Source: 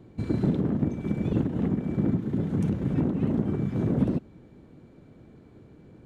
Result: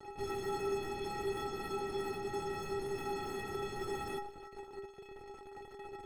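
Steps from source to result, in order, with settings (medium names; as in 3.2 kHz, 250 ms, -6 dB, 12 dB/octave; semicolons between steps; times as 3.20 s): fuzz box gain 44 dB, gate -47 dBFS; peak limiter -21.5 dBFS, peak gain reduction 10 dB; inharmonic resonator 390 Hz, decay 0.42 s, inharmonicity 0.03; trim +6.5 dB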